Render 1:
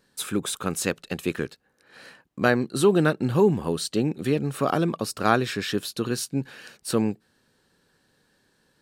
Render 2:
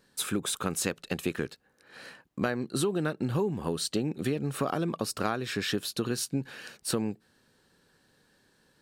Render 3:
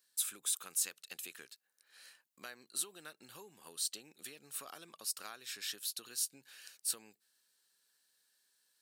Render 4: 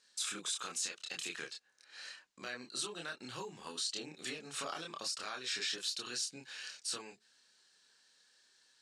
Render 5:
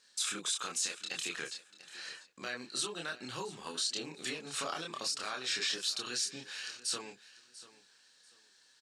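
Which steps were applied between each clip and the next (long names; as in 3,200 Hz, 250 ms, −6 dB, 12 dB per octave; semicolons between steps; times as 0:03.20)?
downward compressor 10 to 1, threshold −25 dBFS, peak gain reduction 12.5 dB
first difference; level −2 dB
low-pass filter 7,000 Hz 24 dB per octave; brickwall limiter −36.5 dBFS, peak gain reduction 11 dB; multi-voice chorus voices 4, 0.3 Hz, delay 28 ms, depth 4.3 ms; level +13 dB
repeating echo 691 ms, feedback 25%, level −17.5 dB; level +3.5 dB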